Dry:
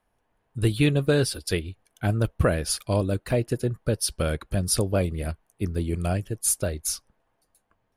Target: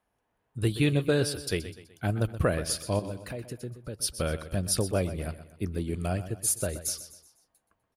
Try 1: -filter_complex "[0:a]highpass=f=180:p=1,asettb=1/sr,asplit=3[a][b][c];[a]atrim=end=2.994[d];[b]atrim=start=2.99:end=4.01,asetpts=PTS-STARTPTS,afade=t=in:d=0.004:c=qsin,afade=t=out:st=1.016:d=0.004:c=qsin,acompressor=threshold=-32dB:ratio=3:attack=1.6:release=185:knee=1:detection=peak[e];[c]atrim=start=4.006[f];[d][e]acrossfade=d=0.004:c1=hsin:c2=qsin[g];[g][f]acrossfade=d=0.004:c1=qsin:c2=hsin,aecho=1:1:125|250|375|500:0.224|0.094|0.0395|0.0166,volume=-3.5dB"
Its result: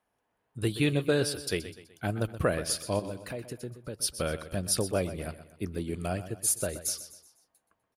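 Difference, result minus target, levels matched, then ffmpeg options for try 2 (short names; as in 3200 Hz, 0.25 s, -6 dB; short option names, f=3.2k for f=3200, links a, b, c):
125 Hz band -3.0 dB
-filter_complex "[0:a]highpass=f=60:p=1,asettb=1/sr,asplit=3[a][b][c];[a]atrim=end=2.994[d];[b]atrim=start=2.99:end=4.01,asetpts=PTS-STARTPTS,afade=t=in:d=0.004:c=qsin,afade=t=out:st=1.016:d=0.004:c=qsin,acompressor=threshold=-32dB:ratio=3:attack=1.6:release=185:knee=1:detection=peak[e];[c]atrim=start=4.006[f];[d][e]acrossfade=d=0.004:c1=hsin:c2=qsin[g];[g][f]acrossfade=d=0.004:c1=qsin:c2=hsin,aecho=1:1:125|250|375|500:0.224|0.094|0.0395|0.0166,volume=-3.5dB"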